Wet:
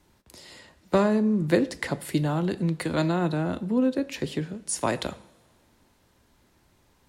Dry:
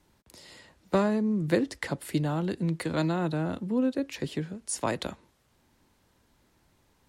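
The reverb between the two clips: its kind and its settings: two-slope reverb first 0.51 s, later 2.3 s, from -18 dB, DRR 13 dB; gain +3 dB

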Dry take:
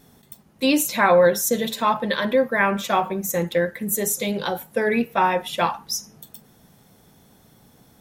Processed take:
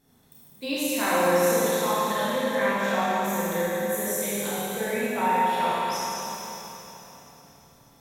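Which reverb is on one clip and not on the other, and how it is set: Schroeder reverb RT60 3.7 s, combs from 25 ms, DRR -9.5 dB; gain -13.5 dB

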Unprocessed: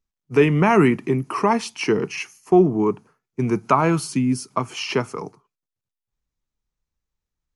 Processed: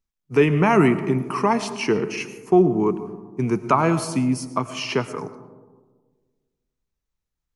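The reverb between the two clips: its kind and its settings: digital reverb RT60 1.5 s, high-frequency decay 0.25×, pre-delay 65 ms, DRR 12.5 dB; gain -1 dB

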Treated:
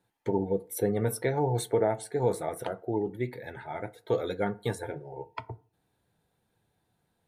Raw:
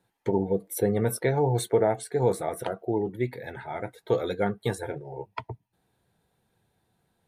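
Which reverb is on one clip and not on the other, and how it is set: FDN reverb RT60 0.4 s, low-frequency decay 1×, high-frequency decay 0.5×, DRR 14 dB; gain -3 dB

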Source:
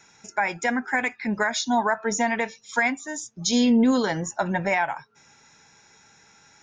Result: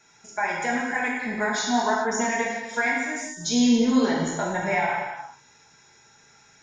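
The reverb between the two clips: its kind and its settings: non-linear reverb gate 0.45 s falling, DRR -4.5 dB; gain -6 dB

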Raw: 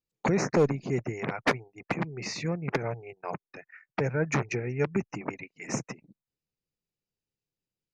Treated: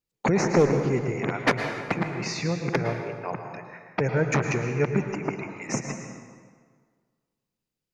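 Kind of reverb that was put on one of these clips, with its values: plate-style reverb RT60 1.7 s, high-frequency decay 0.7×, pre-delay 95 ms, DRR 5 dB; gain +3 dB

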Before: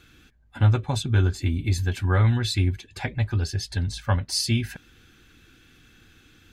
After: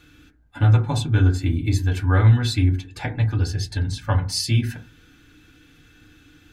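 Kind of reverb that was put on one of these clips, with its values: FDN reverb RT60 0.36 s, low-frequency decay 1.3×, high-frequency decay 0.3×, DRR 3 dB

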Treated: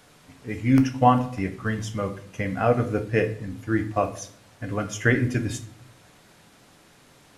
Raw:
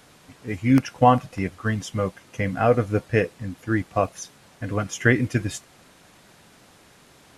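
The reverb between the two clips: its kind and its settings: shoebox room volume 79 m³, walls mixed, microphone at 0.34 m; gain -2.5 dB

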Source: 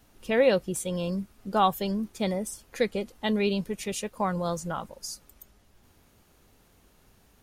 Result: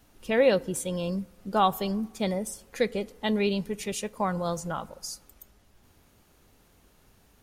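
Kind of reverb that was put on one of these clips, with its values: FDN reverb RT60 1.3 s, low-frequency decay 1×, high-frequency decay 0.4×, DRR 19.5 dB

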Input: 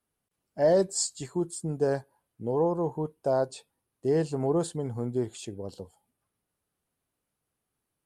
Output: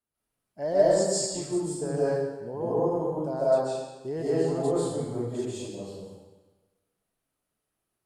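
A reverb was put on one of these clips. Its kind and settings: digital reverb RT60 1.2 s, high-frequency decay 0.95×, pre-delay 0.105 s, DRR -9.5 dB; gain -8.5 dB

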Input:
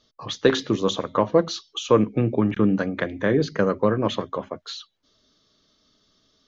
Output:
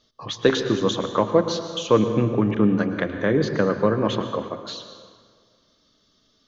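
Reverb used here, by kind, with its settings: plate-style reverb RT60 1.8 s, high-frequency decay 0.65×, pre-delay 95 ms, DRR 8 dB

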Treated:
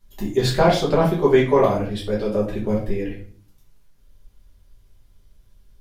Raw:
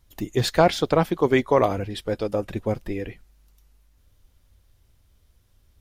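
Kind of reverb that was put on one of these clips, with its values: shoebox room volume 37 m³, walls mixed, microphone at 1.2 m; gain -5.5 dB

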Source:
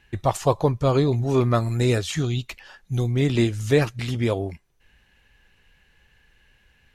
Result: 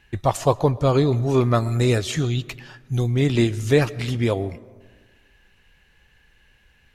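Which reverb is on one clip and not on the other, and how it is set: digital reverb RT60 1.5 s, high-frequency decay 0.4×, pre-delay 80 ms, DRR 19.5 dB; gain +1.5 dB

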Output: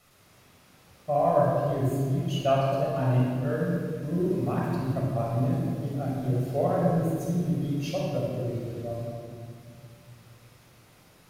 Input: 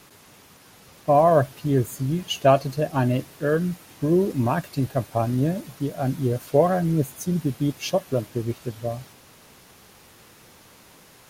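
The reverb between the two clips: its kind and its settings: shoebox room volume 4000 m³, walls mixed, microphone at 6.5 m; gain -14.5 dB

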